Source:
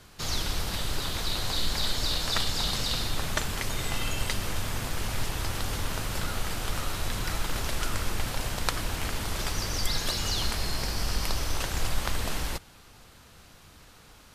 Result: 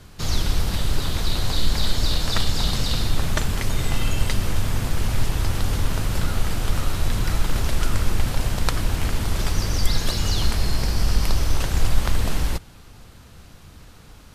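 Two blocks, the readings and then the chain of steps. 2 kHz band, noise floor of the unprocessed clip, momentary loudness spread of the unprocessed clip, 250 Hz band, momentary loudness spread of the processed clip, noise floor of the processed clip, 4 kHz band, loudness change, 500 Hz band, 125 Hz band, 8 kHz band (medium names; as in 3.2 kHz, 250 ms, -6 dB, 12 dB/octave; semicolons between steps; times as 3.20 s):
+2.5 dB, -53 dBFS, 5 LU, +8.0 dB, 3 LU, -46 dBFS, +2.0 dB, +5.5 dB, +4.5 dB, +10.0 dB, +2.0 dB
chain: bass shelf 320 Hz +9 dB; trim +2 dB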